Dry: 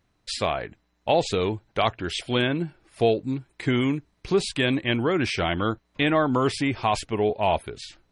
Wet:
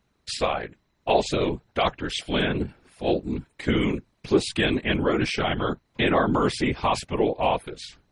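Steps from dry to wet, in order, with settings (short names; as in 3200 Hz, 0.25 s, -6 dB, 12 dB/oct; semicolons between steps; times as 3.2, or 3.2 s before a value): 2.66–3.48 transient shaper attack -11 dB, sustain +3 dB; whisperiser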